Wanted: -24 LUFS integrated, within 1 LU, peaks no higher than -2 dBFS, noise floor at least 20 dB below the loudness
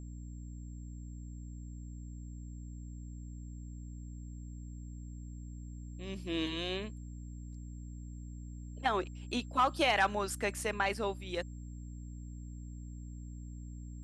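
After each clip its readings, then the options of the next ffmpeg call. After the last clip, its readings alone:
hum 60 Hz; highest harmonic 300 Hz; hum level -42 dBFS; steady tone 7.5 kHz; tone level -64 dBFS; loudness -38.5 LUFS; peak level -16.5 dBFS; loudness target -24.0 LUFS
-> -af "bandreject=f=60:t=h:w=4,bandreject=f=120:t=h:w=4,bandreject=f=180:t=h:w=4,bandreject=f=240:t=h:w=4,bandreject=f=300:t=h:w=4"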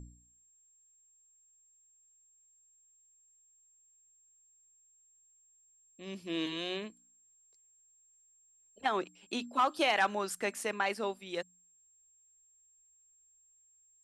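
hum not found; steady tone 7.5 kHz; tone level -64 dBFS
-> -af "bandreject=f=7500:w=30"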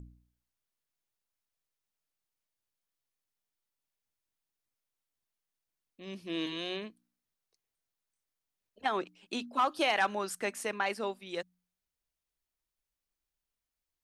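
steady tone not found; loudness -33.5 LUFS; peak level -16.5 dBFS; loudness target -24.0 LUFS
-> -af "volume=2.99"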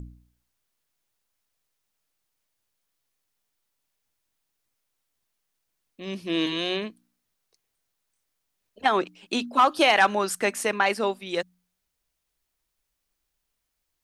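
loudness -24.0 LUFS; peak level -7.0 dBFS; noise floor -80 dBFS

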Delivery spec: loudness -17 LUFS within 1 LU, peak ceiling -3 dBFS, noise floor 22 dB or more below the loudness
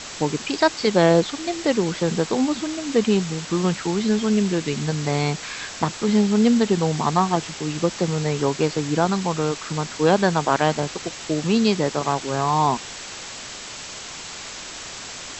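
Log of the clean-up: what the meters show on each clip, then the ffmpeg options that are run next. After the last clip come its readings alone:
noise floor -36 dBFS; noise floor target -44 dBFS; loudness -21.5 LUFS; peak level -4.0 dBFS; loudness target -17.0 LUFS
-> -af "afftdn=nr=8:nf=-36"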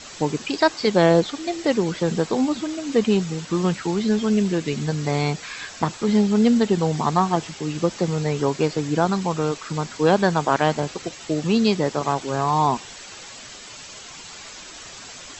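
noise floor -40 dBFS; noise floor target -44 dBFS
-> -af "afftdn=nr=6:nf=-40"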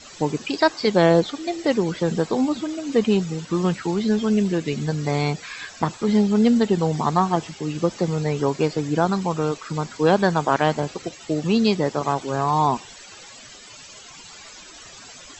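noise floor -43 dBFS; noise floor target -44 dBFS
-> -af "afftdn=nr=6:nf=-43"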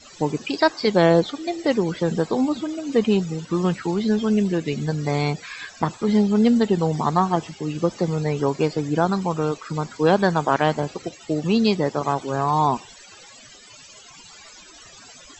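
noise floor -46 dBFS; loudness -22.0 LUFS; peak level -4.0 dBFS; loudness target -17.0 LUFS
-> -af "volume=1.78,alimiter=limit=0.708:level=0:latency=1"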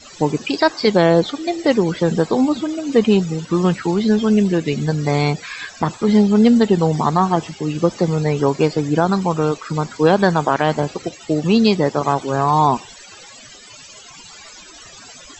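loudness -17.5 LUFS; peak level -3.0 dBFS; noise floor -41 dBFS

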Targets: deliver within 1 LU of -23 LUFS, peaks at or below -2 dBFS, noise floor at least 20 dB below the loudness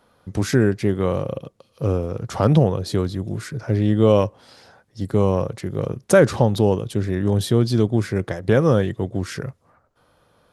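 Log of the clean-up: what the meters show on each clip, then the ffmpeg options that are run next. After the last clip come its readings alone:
loudness -20.5 LUFS; peak level -2.5 dBFS; loudness target -23.0 LUFS
-> -af "volume=0.75"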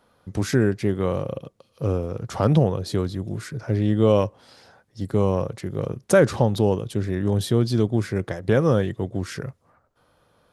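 loudness -23.0 LUFS; peak level -5.0 dBFS; noise floor -65 dBFS

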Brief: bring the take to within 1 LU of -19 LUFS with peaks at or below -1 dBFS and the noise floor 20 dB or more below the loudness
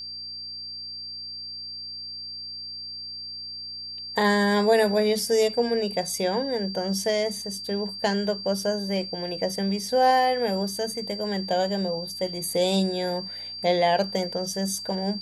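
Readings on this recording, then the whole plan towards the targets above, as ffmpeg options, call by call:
hum 60 Hz; highest harmonic 300 Hz; hum level -56 dBFS; steady tone 4.7 kHz; tone level -34 dBFS; loudness -26.0 LUFS; peak level -10.0 dBFS; loudness target -19.0 LUFS
-> -af "bandreject=f=60:t=h:w=4,bandreject=f=120:t=h:w=4,bandreject=f=180:t=h:w=4,bandreject=f=240:t=h:w=4,bandreject=f=300:t=h:w=4"
-af "bandreject=f=4700:w=30"
-af "volume=2.24"

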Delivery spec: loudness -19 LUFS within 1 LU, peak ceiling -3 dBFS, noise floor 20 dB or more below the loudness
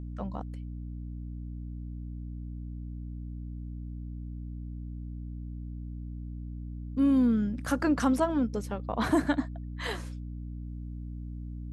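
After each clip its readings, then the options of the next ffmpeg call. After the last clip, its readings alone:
hum 60 Hz; highest harmonic 300 Hz; hum level -36 dBFS; loudness -33.0 LUFS; peak level -14.0 dBFS; loudness target -19.0 LUFS
-> -af "bandreject=f=60:t=h:w=6,bandreject=f=120:t=h:w=6,bandreject=f=180:t=h:w=6,bandreject=f=240:t=h:w=6,bandreject=f=300:t=h:w=6"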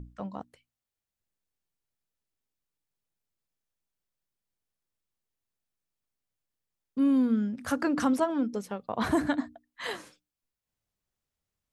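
hum not found; loudness -29.0 LUFS; peak level -14.0 dBFS; loudness target -19.0 LUFS
-> -af "volume=3.16"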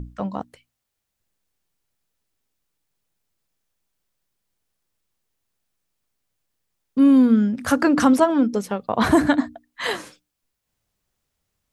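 loudness -19.0 LUFS; peak level -4.0 dBFS; noise floor -80 dBFS

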